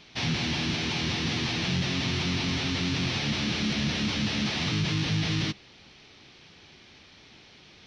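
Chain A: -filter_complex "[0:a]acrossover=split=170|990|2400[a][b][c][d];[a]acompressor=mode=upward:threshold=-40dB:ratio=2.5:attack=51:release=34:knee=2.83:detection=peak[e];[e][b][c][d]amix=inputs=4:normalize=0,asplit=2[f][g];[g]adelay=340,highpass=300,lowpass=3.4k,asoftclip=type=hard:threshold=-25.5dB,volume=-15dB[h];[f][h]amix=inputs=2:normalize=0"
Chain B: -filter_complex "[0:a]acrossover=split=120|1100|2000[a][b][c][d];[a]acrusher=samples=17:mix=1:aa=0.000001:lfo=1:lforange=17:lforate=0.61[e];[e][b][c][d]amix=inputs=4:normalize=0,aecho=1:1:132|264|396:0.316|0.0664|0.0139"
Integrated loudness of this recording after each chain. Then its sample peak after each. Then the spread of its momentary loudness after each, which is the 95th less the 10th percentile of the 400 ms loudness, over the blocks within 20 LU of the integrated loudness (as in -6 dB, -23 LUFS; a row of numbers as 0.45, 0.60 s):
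-27.5, -27.0 LUFS; -16.5, -15.5 dBFS; 20, 1 LU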